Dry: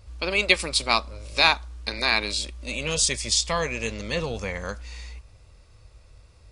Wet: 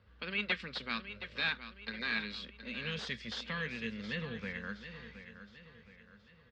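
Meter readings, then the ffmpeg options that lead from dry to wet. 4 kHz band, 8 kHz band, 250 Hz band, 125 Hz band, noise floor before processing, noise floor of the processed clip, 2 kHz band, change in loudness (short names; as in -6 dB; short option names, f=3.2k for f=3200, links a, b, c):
-15.0 dB, -33.5 dB, -7.0 dB, -11.0 dB, -53 dBFS, -62 dBFS, -10.5 dB, -14.0 dB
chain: -filter_complex "[0:a]equalizer=f=660:t=o:w=2:g=-14.5,acrossover=split=320|1500[a][b][c];[b]acompressor=threshold=-53dB:ratio=6[d];[c]asoftclip=type=hard:threshold=-18.5dB[e];[a][d][e]amix=inputs=3:normalize=0,highpass=210,equalizer=f=220:t=q:w=4:g=5,equalizer=f=320:t=q:w=4:g=-10,equalizer=f=470:t=q:w=4:g=7,equalizer=f=1.6k:t=q:w=4:g=6,equalizer=f=2.4k:t=q:w=4:g=-10,lowpass=f=2.8k:w=0.5412,lowpass=f=2.8k:w=1.3066,aecho=1:1:719|1438|2157|2876:0.266|0.117|0.0515|0.0227"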